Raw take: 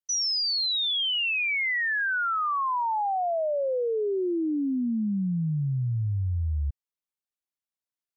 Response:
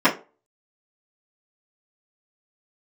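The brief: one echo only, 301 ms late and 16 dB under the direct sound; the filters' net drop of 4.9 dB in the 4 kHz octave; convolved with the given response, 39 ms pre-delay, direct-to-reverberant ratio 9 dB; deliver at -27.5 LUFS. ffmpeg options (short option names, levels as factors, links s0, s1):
-filter_complex "[0:a]equalizer=f=4000:t=o:g=-6.5,aecho=1:1:301:0.158,asplit=2[s0][s1];[1:a]atrim=start_sample=2205,adelay=39[s2];[s1][s2]afir=irnorm=-1:irlink=0,volume=0.0299[s3];[s0][s3]amix=inputs=2:normalize=0,volume=0.944"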